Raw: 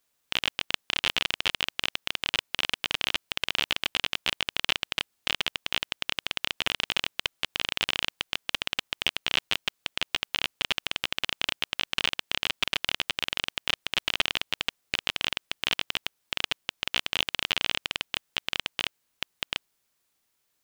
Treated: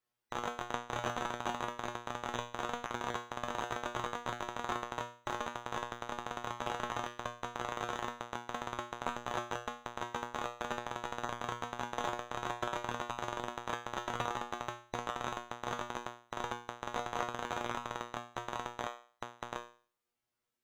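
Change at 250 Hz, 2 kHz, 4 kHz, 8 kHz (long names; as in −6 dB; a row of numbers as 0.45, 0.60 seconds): 0.0, −12.0, −21.0, −9.0 decibels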